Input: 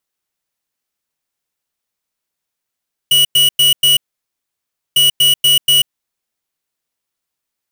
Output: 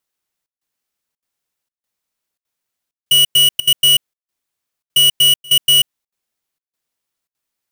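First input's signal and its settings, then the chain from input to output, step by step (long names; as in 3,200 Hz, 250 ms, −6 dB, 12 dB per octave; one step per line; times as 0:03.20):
beeps in groups square 2,930 Hz, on 0.14 s, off 0.10 s, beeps 4, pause 0.99 s, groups 2, −10 dBFS
gate pattern "xxxxxx..xxxxxxx." 196 BPM −24 dB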